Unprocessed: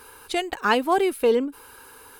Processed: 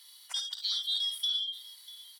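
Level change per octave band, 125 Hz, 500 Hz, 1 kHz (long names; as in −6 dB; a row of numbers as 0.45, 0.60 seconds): can't be measured, below −40 dB, below −35 dB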